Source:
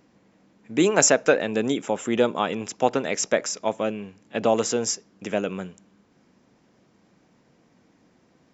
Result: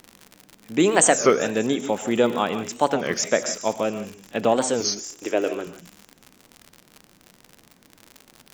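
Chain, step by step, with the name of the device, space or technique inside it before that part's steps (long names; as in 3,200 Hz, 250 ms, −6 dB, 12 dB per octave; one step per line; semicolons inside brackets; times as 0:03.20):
0:04.83–0:05.67: low shelf with overshoot 250 Hz −8.5 dB, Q 3
delay with a high-pass on its return 191 ms, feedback 53%, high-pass 4,800 Hz, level −14 dB
reverb whose tail is shaped and stops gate 180 ms rising, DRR 10 dB
warped LP (wow of a warped record 33 1/3 rpm, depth 250 cents; surface crackle 81 per second −30 dBFS; pink noise bed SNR 41 dB)
level +1 dB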